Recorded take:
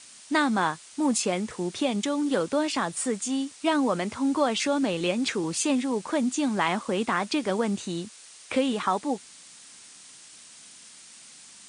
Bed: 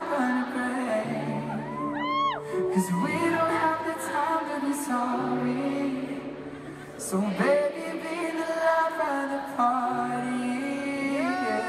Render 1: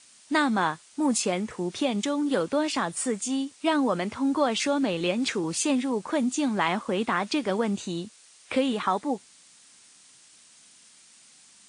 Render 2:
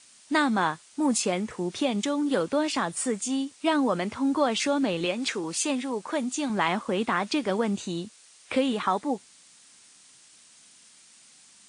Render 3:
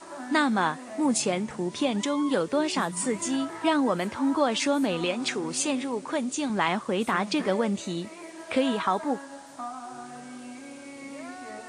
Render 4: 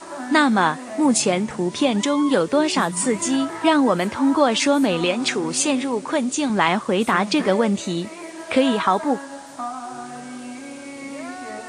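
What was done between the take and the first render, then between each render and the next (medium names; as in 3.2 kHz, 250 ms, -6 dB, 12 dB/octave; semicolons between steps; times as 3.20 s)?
noise print and reduce 6 dB
5.05–6.50 s: bass shelf 240 Hz -9.5 dB
add bed -13 dB
trim +7 dB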